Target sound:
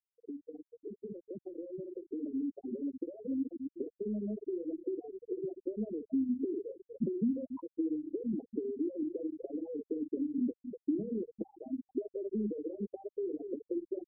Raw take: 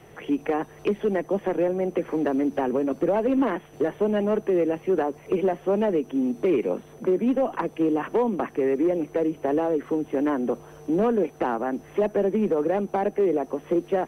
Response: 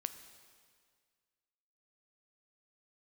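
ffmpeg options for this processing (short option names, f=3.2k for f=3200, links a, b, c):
-filter_complex "[0:a]acrossover=split=93|190[a][b][c];[a]acompressor=threshold=-53dB:ratio=4[d];[b]acompressor=threshold=-45dB:ratio=4[e];[c]acompressor=threshold=-27dB:ratio=4[f];[d][e][f]amix=inputs=3:normalize=0,asplit=2[g][h];[h]aecho=0:1:52.48|244.9:0.447|0.282[i];[g][i]amix=inputs=2:normalize=0,acompressor=threshold=-34dB:ratio=16,afftfilt=real='re*gte(hypot(re,im),0.0794)':imag='im*gte(hypot(re,im),0.0794)':win_size=1024:overlap=0.75,asubboost=boost=11.5:cutoff=240,volume=-5.5dB"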